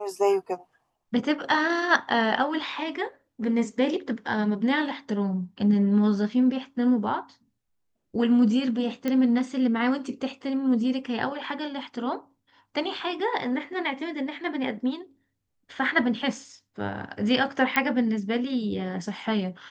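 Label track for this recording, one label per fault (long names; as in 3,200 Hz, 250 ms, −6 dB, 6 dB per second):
9.080000	9.080000	click −15 dBFS
17.760000	17.760000	click −9 dBFS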